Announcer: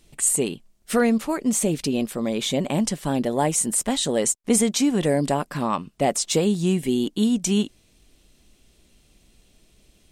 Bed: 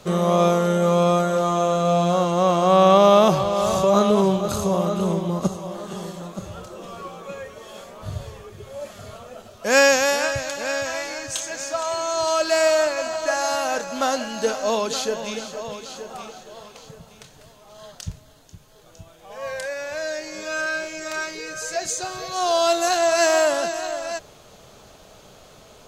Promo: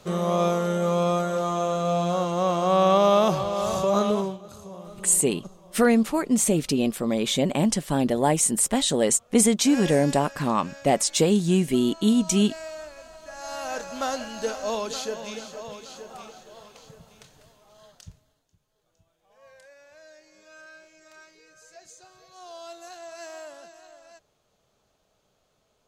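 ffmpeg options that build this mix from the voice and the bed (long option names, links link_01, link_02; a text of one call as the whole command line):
ffmpeg -i stem1.wav -i stem2.wav -filter_complex "[0:a]adelay=4850,volume=0.5dB[link_01];[1:a]volume=8.5dB,afade=type=out:start_time=4.1:duration=0.28:silence=0.188365,afade=type=in:start_time=13.32:duration=0.49:silence=0.211349,afade=type=out:start_time=17.26:duration=1.2:silence=0.149624[link_02];[link_01][link_02]amix=inputs=2:normalize=0" out.wav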